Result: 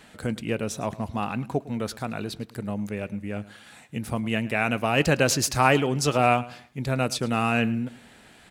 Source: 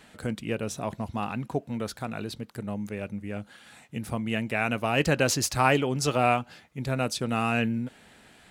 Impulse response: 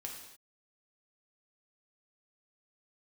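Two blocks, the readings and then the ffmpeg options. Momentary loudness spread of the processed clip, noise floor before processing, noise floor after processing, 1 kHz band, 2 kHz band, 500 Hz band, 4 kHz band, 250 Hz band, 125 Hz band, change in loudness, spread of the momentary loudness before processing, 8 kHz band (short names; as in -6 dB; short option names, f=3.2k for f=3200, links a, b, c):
13 LU, -56 dBFS, -52 dBFS, +2.5 dB, +2.5 dB, +2.5 dB, +2.5 dB, +2.5 dB, +2.5 dB, +2.5 dB, 13 LU, +2.5 dB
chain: -af "aecho=1:1:107|214|321:0.106|0.035|0.0115,volume=2.5dB"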